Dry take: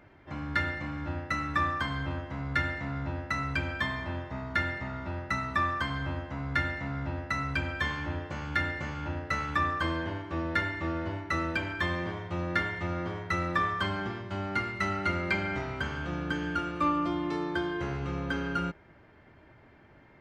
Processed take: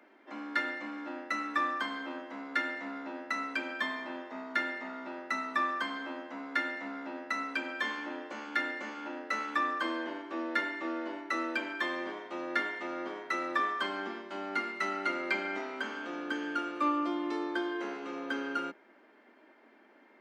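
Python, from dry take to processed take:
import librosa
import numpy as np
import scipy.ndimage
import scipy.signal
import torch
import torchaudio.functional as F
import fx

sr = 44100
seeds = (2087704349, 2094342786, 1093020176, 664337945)

y = scipy.signal.sosfilt(scipy.signal.butter(12, 220.0, 'highpass', fs=sr, output='sos'), x)
y = y * 10.0 ** (-2.0 / 20.0)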